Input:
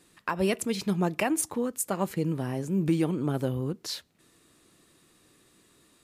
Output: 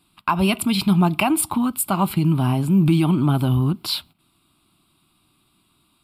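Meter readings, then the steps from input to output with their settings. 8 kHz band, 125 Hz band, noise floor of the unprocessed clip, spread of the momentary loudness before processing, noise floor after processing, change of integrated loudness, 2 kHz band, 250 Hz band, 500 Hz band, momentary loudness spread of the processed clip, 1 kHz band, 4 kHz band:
+6.5 dB, +12.5 dB, -64 dBFS, 6 LU, -65 dBFS, +9.5 dB, +7.0 dB, +10.0 dB, +2.0 dB, 5 LU, +11.0 dB, +11.5 dB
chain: gate -54 dBFS, range -13 dB; in parallel at +2.5 dB: limiter -24 dBFS, peak gain reduction 9 dB; on the sum: fixed phaser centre 1800 Hz, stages 6; gain +8 dB

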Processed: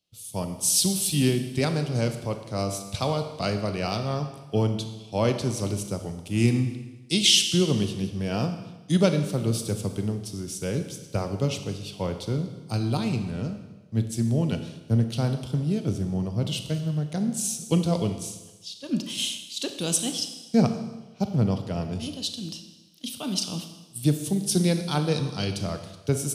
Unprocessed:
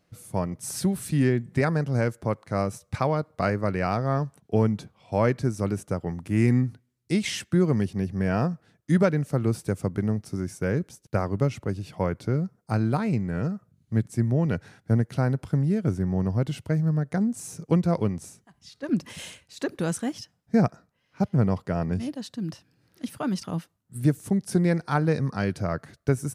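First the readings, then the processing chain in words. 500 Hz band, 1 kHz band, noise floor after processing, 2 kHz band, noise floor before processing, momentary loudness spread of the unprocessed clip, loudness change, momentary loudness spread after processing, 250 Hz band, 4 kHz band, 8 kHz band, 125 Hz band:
-1.0 dB, -3.0 dB, -48 dBFS, -2.0 dB, -70 dBFS, 10 LU, 0.0 dB, 11 LU, -1.0 dB, +14.5 dB, +11.5 dB, -1.0 dB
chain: resonant high shelf 2400 Hz +9.5 dB, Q 3; Schroeder reverb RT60 1.6 s, combs from 27 ms, DRR 6.5 dB; three-band expander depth 40%; gain -2 dB

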